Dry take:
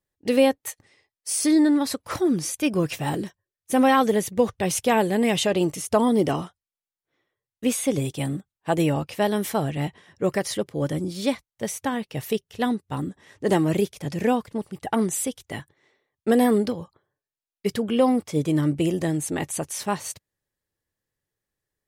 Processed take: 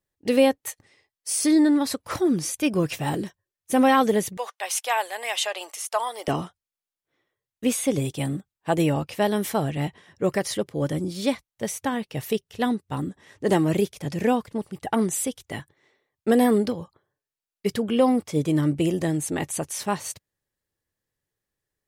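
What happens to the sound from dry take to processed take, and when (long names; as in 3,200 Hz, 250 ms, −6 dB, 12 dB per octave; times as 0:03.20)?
0:04.37–0:06.28: high-pass filter 710 Hz 24 dB per octave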